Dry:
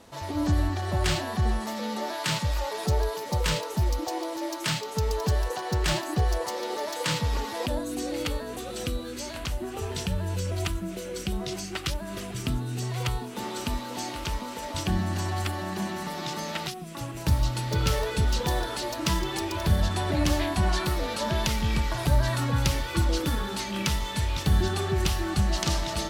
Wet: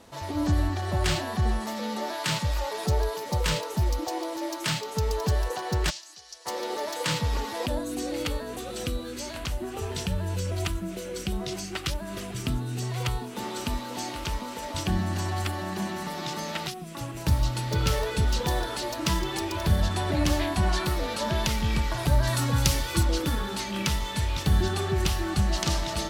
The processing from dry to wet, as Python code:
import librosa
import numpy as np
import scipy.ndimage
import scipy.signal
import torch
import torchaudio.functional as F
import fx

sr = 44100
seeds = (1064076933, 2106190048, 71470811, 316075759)

y = fx.bandpass_q(x, sr, hz=5700.0, q=2.4, at=(5.89, 6.45), fade=0.02)
y = fx.bass_treble(y, sr, bass_db=1, treble_db=7, at=(22.27, 23.03))